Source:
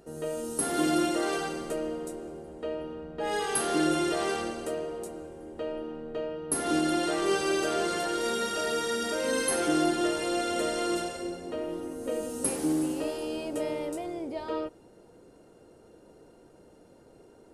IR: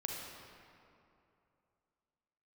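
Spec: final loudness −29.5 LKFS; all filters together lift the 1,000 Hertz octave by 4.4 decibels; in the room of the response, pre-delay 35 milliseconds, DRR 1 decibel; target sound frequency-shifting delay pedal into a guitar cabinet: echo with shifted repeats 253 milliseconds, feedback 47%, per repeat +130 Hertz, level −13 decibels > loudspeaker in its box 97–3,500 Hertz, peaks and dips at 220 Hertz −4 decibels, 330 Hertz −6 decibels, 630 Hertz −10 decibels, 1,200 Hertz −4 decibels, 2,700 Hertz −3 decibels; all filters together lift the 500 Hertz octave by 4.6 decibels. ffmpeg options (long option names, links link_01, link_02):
-filter_complex "[0:a]equalizer=frequency=500:width_type=o:gain=8.5,equalizer=frequency=1000:width_type=o:gain=8.5,asplit=2[link_01][link_02];[1:a]atrim=start_sample=2205,adelay=35[link_03];[link_02][link_03]afir=irnorm=-1:irlink=0,volume=-2dB[link_04];[link_01][link_04]amix=inputs=2:normalize=0,asplit=6[link_05][link_06][link_07][link_08][link_09][link_10];[link_06]adelay=253,afreqshift=130,volume=-13dB[link_11];[link_07]adelay=506,afreqshift=260,volume=-19.6dB[link_12];[link_08]adelay=759,afreqshift=390,volume=-26.1dB[link_13];[link_09]adelay=1012,afreqshift=520,volume=-32.7dB[link_14];[link_10]adelay=1265,afreqshift=650,volume=-39.2dB[link_15];[link_05][link_11][link_12][link_13][link_14][link_15]amix=inputs=6:normalize=0,highpass=97,equalizer=frequency=220:width_type=q:width=4:gain=-4,equalizer=frequency=330:width_type=q:width=4:gain=-6,equalizer=frequency=630:width_type=q:width=4:gain=-10,equalizer=frequency=1200:width_type=q:width=4:gain=-4,equalizer=frequency=2700:width_type=q:width=4:gain=-3,lowpass=frequency=3500:width=0.5412,lowpass=frequency=3500:width=1.3066,volume=-4dB"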